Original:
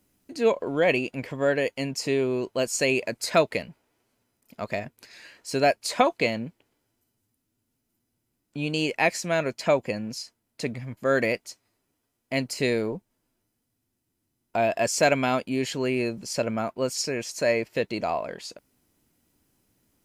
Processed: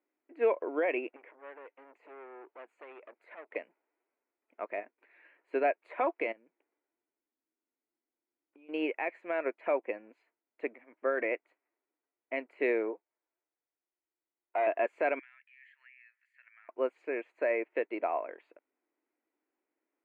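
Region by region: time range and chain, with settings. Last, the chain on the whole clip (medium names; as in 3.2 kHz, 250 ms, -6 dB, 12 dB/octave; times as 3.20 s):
1.16–3.56 s: compression 3:1, threshold -34 dBFS + transformer saturation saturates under 2.3 kHz
6.32–8.69 s: bass shelf 150 Hz +6.5 dB + compression 8:1, threshold -39 dBFS
12.93–14.67 s: high-pass 420 Hz + hard clipper -23 dBFS
15.19–16.69 s: ladder high-pass 1.7 kHz, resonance 80% + tilt EQ +4.5 dB/octave + compression 3:1, threshold -44 dBFS
whole clip: elliptic band-pass 320–2300 Hz, stop band 40 dB; peak limiter -18.5 dBFS; upward expansion 1.5:1, over -44 dBFS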